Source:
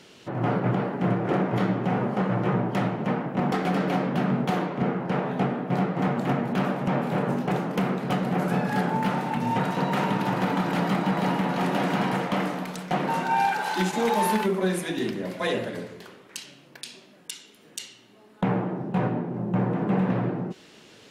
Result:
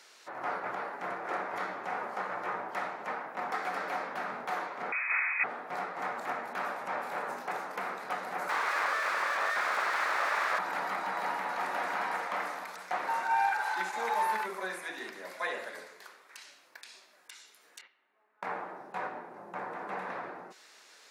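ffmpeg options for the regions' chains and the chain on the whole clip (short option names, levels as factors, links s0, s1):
-filter_complex "[0:a]asettb=1/sr,asplit=3[s0][s1][s2];[s0]atrim=end=4.924[s3];[s1]atrim=start=4.92:end=5.44,asetpts=PTS-STARTPTS,afade=t=in:d=0.004:c=qsin,afade=t=out:st=0.516:d=0.004:c=qsin,aeval=exprs='val(0)+0.5*0.0251*sgn(val(0))':c=same,lowpass=f=2300:t=q:w=0.5098,lowpass=f=2300:t=q:w=0.6013,lowpass=f=2300:t=q:w=0.9,lowpass=f=2300:t=q:w=2.563,afreqshift=-2700[s4];[s2]atrim=start=5.436[s5];[s3][s4]acrossfade=d=0.004:c1=hsin:c2=qsin[s6];[s6][s5]acrossfade=d=0.004:c1=qsin:c2=hsin,asettb=1/sr,asplit=3[s7][s8][s9];[s7]atrim=end=8.494[s10];[s8]atrim=start=8.49:end=10.59,asetpts=PTS-STARTPTS,afade=t=in:d=0.004:c=qsin,afade=t=out:st=2.096:d=0.004:c=qsin,asplit=2[s11][s12];[s12]highpass=f=720:p=1,volume=35.5,asoftclip=type=tanh:threshold=0.188[s13];[s11][s13]amix=inputs=2:normalize=0,lowpass=f=2900:p=1,volume=0.501,lowshelf=f=220:t=q:w=3:g=-13.5,aeval=exprs='abs(val(0))':c=same[s14];[s9]atrim=start=10.586[s15];[s10][s14]acrossfade=d=0.004:c1=hsin:c2=qsin[s16];[s16][s15]acrossfade=d=0.004:c1=qsin:c2=hsin,asettb=1/sr,asplit=3[s17][s18][s19];[s17]atrim=end=17.814[s20];[s18]atrim=start=17.81:end=18.47,asetpts=PTS-STARTPTS,afade=t=in:d=0.004:c=qsin,afade=t=out:st=0.656:d=0.004:c=qsin,lowpass=f=2600:w=0.5412,lowpass=f=2600:w=1.3066,asoftclip=type=hard:threshold=0.0841,agate=range=0.355:threshold=0.00282:ratio=16:release=100:detection=peak[s21];[s19]atrim=start=18.466[s22];[s20][s21]acrossfade=d=0.004:c1=hsin:c2=qsin[s23];[s23][s22]acrossfade=d=0.004:c1=qsin:c2=hsin,highpass=1000,acrossover=split=2900[s24][s25];[s25]acompressor=threshold=0.00447:ratio=4:attack=1:release=60[s26];[s24][s26]amix=inputs=2:normalize=0,equalizer=f=3000:t=o:w=0.5:g=-10.5"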